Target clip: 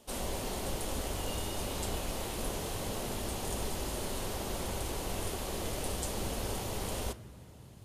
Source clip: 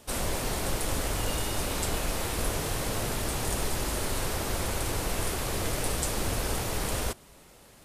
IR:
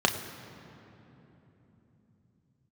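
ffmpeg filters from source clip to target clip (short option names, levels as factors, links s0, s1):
-filter_complex "[0:a]asplit=2[s0][s1];[1:a]atrim=start_sample=2205,lowshelf=f=89:g=11.5[s2];[s1][s2]afir=irnorm=-1:irlink=0,volume=0.0944[s3];[s0][s3]amix=inputs=2:normalize=0,volume=0.422"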